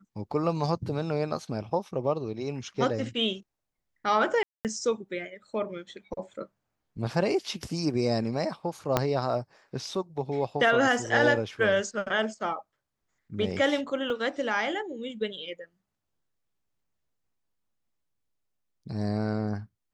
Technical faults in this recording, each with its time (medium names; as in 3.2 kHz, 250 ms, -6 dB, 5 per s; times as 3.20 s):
4.43–4.65 s: dropout 218 ms
8.97 s: pop -8 dBFS
14.10 s: dropout 2 ms